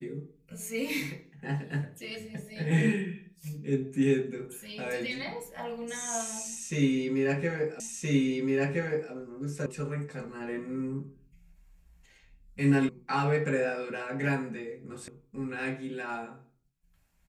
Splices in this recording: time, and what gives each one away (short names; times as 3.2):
7.8 repeat of the last 1.32 s
9.66 sound cut off
12.89 sound cut off
15.08 sound cut off